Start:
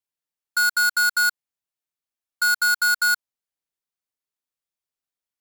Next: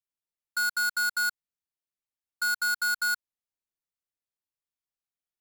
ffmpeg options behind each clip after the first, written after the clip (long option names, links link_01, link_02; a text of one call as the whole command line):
ffmpeg -i in.wav -af "lowshelf=frequency=160:gain=7,volume=-7.5dB" out.wav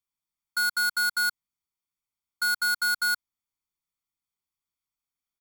ffmpeg -i in.wav -af "aecho=1:1:0.9:0.84" out.wav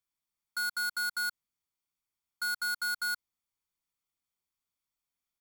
ffmpeg -i in.wav -af "alimiter=level_in=3dB:limit=-24dB:level=0:latency=1,volume=-3dB" out.wav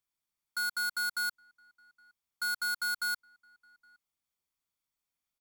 ffmpeg -i in.wav -filter_complex "[0:a]asplit=2[link_01][link_02];[link_02]adelay=816.3,volume=-27dB,highshelf=frequency=4000:gain=-18.4[link_03];[link_01][link_03]amix=inputs=2:normalize=0" out.wav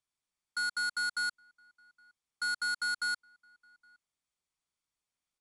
ffmpeg -i in.wav -af "aresample=22050,aresample=44100" out.wav